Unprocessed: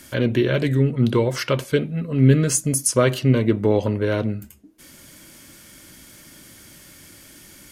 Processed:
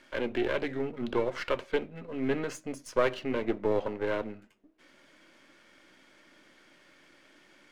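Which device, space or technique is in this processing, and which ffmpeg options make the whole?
crystal radio: -af "highpass=360,lowpass=2700,aeval=exprs='if(lt(val(0),0),0.447*val(0),val(0))':channel_layout=same,volume=-4dB"

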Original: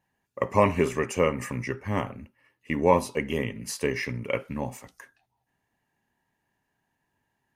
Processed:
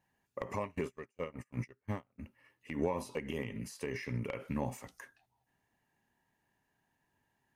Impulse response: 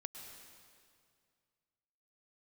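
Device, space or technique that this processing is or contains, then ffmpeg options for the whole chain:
de-esser from a sidechain: -filter_complex "[0:a]asplit=2[link_01][link_02];[link_02]highpass=frequency=5900:poles=1,apad=whole_len=333237[link_03];[link_01][link_03]sidechaincompress=threshold=-45dB:ratio=8:attack=1.8:release=94,asplit=3[link_04][link_05][link_06];[link_04]afade=type=out:start_time=0.55:duration=0.02[link_07];[link_05]agate=range=-37dB:threshold=-32dB:ratio=16:detection=peak,afade=type=in:start_time=0.55:duration=0.02,afade=type=out:start_time=2.18:duration=0.02[link_08];[link_06]afade=type=in:start_time=2.18:duration=0.02[link_09];[link_07][link_08][link_09]amix=inputs=3:normalize=0,volume=-2dB"

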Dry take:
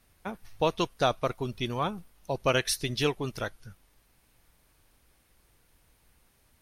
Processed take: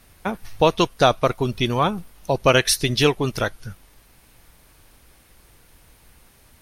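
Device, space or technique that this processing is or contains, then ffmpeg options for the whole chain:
parallel compression: -filter_complex "[0:a]asplit=2[link_01][link_02];[link_02]acompressor=threshold=-36dB:ratio=6,volume=-5.5dB[link_03];[link_01][link_03]amix=inputs=2:normalize=0,volume=8.5dB"

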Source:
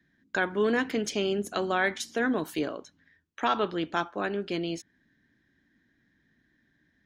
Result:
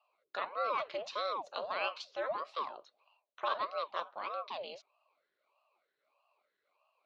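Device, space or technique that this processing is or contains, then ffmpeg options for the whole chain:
voice changer toy: -af "aeval=exprs='val(0)*sin(2*PI*530*n/s+530*0.8/1.6*sin(2*PI*1.6*n/s))':channel_layout=same,highpass=570,equalizer=frequency=590:width_type=q:width=4:gain=10,equalizer=frequency=1100:width_type=q:width=4:gain=8,equalizer=frequency=1800:width_type=q:width=4:gain=-6,equalizer=frequency=2700:width_type=q:width=4:gain=4,equalizer=frequency=4100:width_type=q:width=4:gain=8,lowpass=frequency=5000:width=0.5412,lowpass=frequency=5000:width=1.3066,volume=-8.5dB"

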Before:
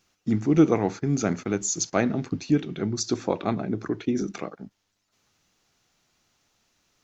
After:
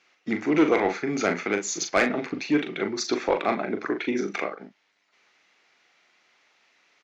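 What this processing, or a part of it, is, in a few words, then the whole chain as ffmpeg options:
intercom: -filter_complex "[0:a]highpass=400,lowpass=4000,equalizer=frequency=2100:width_type=o:width=0.57:gain=9,asoftclip=type=tanh:threshold=-17.5dB,asplit=2[link_01][link_02];[link_02]adelay=40,volume=-7dB[link_03];[link_01][link_03]amix=inputs=2:normalize=0,volume=5.5dB"

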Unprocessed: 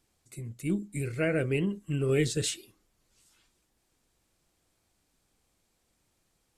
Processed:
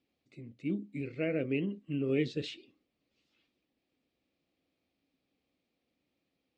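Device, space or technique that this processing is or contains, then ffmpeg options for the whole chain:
guitar cabinet: -af "highpass=95,equalizer=frequency=110:width_type=q:width=4:gain=-7,equalizer=frequency=270:width_type=q:width=4:gain=10,equalizer=frequency=530:width_type=q:width=4:gain=4,equalizer=frequency=960:width_type=q:width=4:gain=-8,equalizer=frequency=1500:width_type=q:width=4:gain=-8,equalizer=frequency=2500:width_type=q:width=4:gain=4,lowpass=frequency=4300:width=0.5412,lowpass=frequency=4300:width=1.3066,volume=-6.5dB"

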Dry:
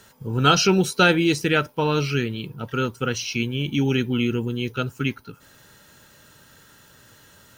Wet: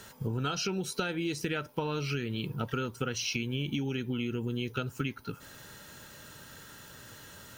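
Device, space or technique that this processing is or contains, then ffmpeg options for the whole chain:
serial compression, leveller first: -af "acompressor=threshold=-24dB:ratio=2,acompressor=threshold=-31dB:ratio=10,volume=2dB"

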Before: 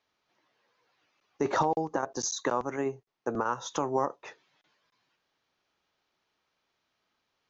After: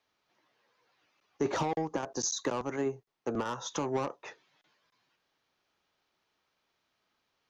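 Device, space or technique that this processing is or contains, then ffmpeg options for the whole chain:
one-band saturation: -filter_complex "[0:a]acrossover=split=400|3400[link_01][link_02][link_03];[link_02]asoftclip=type=tanh:threshold=-31dB[link_04];[link_01][link_04][link_03]amix=inputs=3:normalize=0"

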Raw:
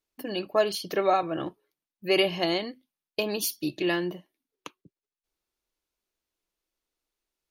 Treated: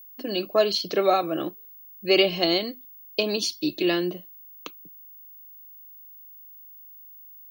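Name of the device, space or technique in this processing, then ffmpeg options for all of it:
old television with a line whistle: -af "highpass=frequency=170:width=0.5412,highpass=frequency=170:width=1.3066,equalizer=frequency=910:width_type=q:width=4:gain=-9,equalizer=frequency=1800:width_type=q:width=4:gain=-6,equalizer=frequency=4100:width_type=q:width=4:gain=6,lowpass=frequency=6600:width=0.5412,lowpass=frequency=6600:width=1.3066,aeval=exprs='val(0)+0.00398*sin(2*PI*15625*n/s)':channel_layout=same,volume=4dB"

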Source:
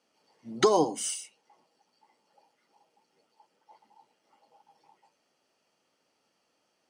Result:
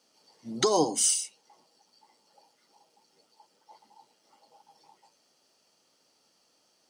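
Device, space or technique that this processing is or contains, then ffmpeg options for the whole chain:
over-bright horn tweeter: -af "highshelf=frequency=3300:width_type=q:width=1.5:gain=6,alimiter=limit=-14.5dB:level=0:latency=1:release=331,volume=3dB"

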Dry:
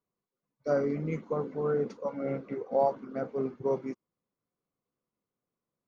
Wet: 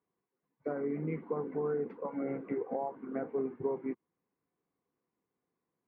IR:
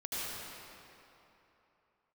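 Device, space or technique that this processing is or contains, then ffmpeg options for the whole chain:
bass amplifier: -af "acompressor=threshold=-35dB:ratio=6,highpass=62,equalizer=frequency=83:width_type=q:width=4:gain=-10,equalizer=frequency=130:width_type=q:width=4:gain=-9,equalizer=frequency=210:width_type=q:width=4:gain=-6,equalizer=frequency=580:width_type=q:width=4:gain=-9,equalizer=frequency=1300:width_type=q:width=4:gain=-7,lowpass=frequency=2100:width=0.5412,lowpass=frequency=2100:width=1.3066,volume=6.5dB"

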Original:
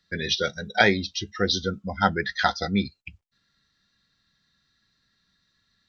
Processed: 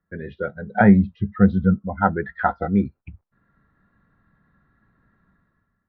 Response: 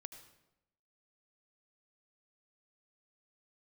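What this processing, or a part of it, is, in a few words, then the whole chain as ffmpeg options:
action camera in a waterproof case: -filter_complex "[0:a]asettb=1/sr,asplit=3[link_01][link_02][link_03];[link_01]atrim=end=0.714[link_04];[link_02]atrim=start=0.71:end=1.76,asetpts=PTS-STARTPTS,afade=type=in:duration=0.004:curve=qsin,afade=type=out:start_time=1.046:duration=0.004:curve=qsin,lowshelf=frequency=250:width_type=q:width=3:gain=6.5[link_05];[link_03]atrim=start=1.756[link_06];[link_04][link_05]acrossfade=duration=0.004:curve1=hsin:curve2=qsin[link_07];[link_07][link_06]acrossfade=duration=0.004:curve1=qsin:curve2=hsin,lowpass=frequency=1400:width=0.5412,lowpass=frequency=1400:width=1.3066,dynaudnorm=framelen=130:gausssize=9:maxgain=14.5dB,volume=-1dB" -ar 24000 -c:a aac -b:a 96k

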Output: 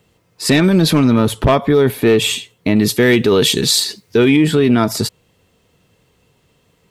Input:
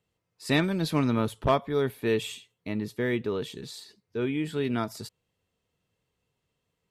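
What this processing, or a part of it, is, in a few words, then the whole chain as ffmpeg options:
mastering chain: -filter_complex "[0:a]equalizer=frequency=280:width_type=o:width=1.8:gain=2.5,acompressor=threshold=-25dB:ratio=2,asoftclip=type=tanh:threshold=-17dB,asoftclip=type=hard:threshold=-20.5dB,alimiter=level_in=24.5dB:limit=-1dB:release=50:level=0:latency=1,asettb=1/sr,asplit=3[link_01][link_02][link_03];[link_01]atrim=end=2.764[link_04];[link_02]atrim=start=2.76:end=4.37,asetpts=PTS-STARTPTS,afade=type=in:duration=0.004:curve=qsin,afade=type=out:start_time=1.606:duration=0.004:curve=qsin,highshelf=frequency=2400:gain=10.5[link_05];[link_03]atrim=start=4.366[link_06];[link_04][link_05]acrossfade=duration=0.004:curve1=hsin:curve2=qsin[link_07];[link_07][link_06]acrossfade=duration=0.004:curve1=qsin:curve2=hsin,volume=-4dB"

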